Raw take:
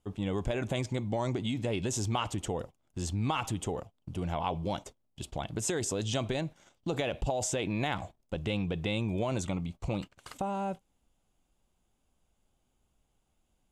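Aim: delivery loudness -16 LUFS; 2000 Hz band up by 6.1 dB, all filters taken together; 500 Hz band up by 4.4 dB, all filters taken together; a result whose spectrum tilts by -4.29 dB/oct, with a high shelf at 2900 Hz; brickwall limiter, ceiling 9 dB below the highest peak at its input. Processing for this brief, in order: bell 500 Hz +5 dB; bell 2000 Hz +4.5 dB; high shelf 2900 Hz +7 dB; gain +17 dB; limiter -4.5 dBFS

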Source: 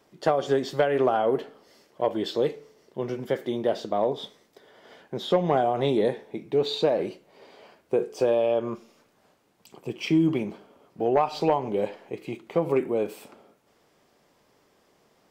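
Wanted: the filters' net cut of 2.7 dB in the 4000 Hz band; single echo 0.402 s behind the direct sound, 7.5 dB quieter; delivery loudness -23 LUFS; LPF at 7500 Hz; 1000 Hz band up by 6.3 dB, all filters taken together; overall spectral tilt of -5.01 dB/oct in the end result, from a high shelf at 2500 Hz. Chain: LPF 7500 Hz; bell 1000 Hz +9 dB; high shelf 2500 Hz +3 dB; bell 4000 Hz -6 dB; echo 0.402 s -7.5 dB; gain +0.5 dB

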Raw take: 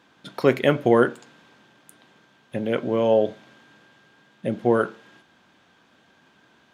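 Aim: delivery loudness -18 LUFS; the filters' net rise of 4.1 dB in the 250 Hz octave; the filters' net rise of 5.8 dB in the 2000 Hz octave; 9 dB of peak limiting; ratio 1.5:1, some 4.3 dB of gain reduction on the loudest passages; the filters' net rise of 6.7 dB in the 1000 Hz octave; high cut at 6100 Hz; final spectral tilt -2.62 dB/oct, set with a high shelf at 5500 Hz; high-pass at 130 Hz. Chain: HPF 130 Hz; LPF 6100 Hz; bell 250 Hz +5 dB; bell 1000 Hz +7.5 dB; bell 2000 Hz +4 dB; high shelf 5500 Hz +4 dB; compressor 1.5:1, threshold -20 dBFS; gain +8 dB; limiter -5 dBFS

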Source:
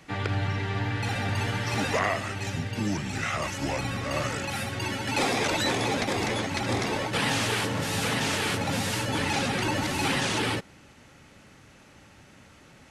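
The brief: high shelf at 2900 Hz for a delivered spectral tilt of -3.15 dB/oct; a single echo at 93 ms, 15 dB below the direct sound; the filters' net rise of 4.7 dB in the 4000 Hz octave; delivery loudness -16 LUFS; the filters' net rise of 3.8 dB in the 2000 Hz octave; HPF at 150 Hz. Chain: HPF 150 Hz; bell 2000 Hz +4.5 dB; high shelf 2900 Hz -6 dB; bell 4000 Hz +9 dB; echo 93 ms -15 dB; gain +9.5 dB

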